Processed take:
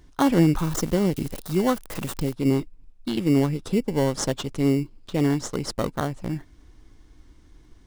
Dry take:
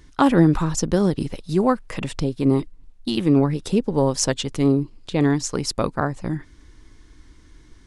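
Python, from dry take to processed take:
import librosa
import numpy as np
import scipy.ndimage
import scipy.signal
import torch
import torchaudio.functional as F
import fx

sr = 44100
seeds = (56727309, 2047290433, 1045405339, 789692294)

p1 = fx.crossing_spikes(x, sr, level_db=-21.0, at=(0.56, 2.33))
p2 = fx.sample_hold(p1, sr, seeds[0], rate_hz=2500.0, jitter_pct=0)
p3 = p1 + (p2 * librosa.db_to_amplitude(-4.0))
y = p3 * librosa.db_to_amplitude(-7.0)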